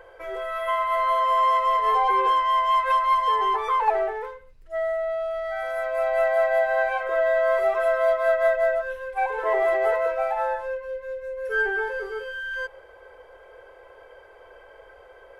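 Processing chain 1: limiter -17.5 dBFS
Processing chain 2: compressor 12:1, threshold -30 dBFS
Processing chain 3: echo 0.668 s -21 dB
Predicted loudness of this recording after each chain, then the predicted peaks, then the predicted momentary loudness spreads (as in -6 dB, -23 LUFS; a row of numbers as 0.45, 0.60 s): -25.5, -33.0, -23.5 LUFS; -17.5, -22.5, -9.5 dBFS; 9, 16, 12 LU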